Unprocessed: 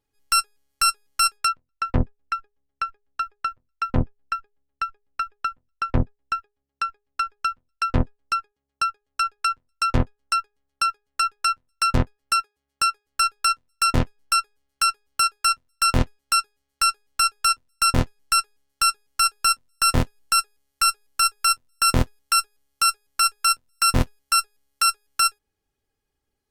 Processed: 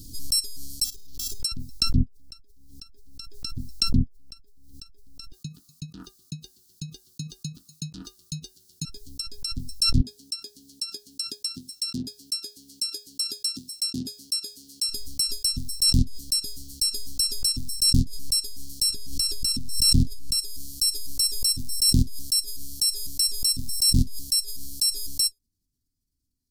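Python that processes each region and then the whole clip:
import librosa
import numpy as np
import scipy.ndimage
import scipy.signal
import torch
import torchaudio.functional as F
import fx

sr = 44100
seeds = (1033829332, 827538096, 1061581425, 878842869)

y = fx.chain(x, sr, fx.level_steps(step_db=12),
    fx.comb(ms=2.3, depth=0.37),
    fx.sample_hold(seeds[0], rate_hz=8700.0, jitter_pct=0), at=(0.84, 1.4))
y = fx.chain(y, sr, fx.ring_mod(carrier_hz=1200.0),
    fx.low_shelf(hz=120.0, db=-9.5), at=(5.32, 8.85))
y = fx.chain(y, sr, fx.highpass(hz=280.0, slope=12),
    fx.high_shelf(hz=8500.0, db=-5.5), at=(10.01, 14.89))
y = fx.chain(y, sr, fx.high_shelf(hz=4700.0, db=-8.0),
    fx.env_flatten(amount_pct=70), at=(18.9, 20.39))
y = scipy.signal.sosfilt(scipy.signal.ellip(3, 1.0, 40, [270.0, 4500.0], 'bandstop', fs=sr, output='sos'), y)
y = fx.pre_swell(y, sr, db_per_s=28.0)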